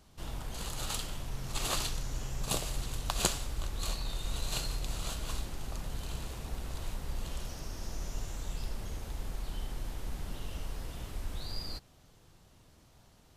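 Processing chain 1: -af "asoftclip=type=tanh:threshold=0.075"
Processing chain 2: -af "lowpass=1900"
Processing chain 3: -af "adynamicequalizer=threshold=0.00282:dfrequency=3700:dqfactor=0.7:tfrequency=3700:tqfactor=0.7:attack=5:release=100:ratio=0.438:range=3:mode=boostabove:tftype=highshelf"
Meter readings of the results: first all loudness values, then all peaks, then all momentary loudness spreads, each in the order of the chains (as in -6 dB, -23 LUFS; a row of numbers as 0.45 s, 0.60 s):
-39.5 LUFS, -41.5 LUFS, -36.0 LUFS; -22.5 dBFS, -14.0 dBFS, -1.5 dBFS; 8 LU, 6 LU, 12 LU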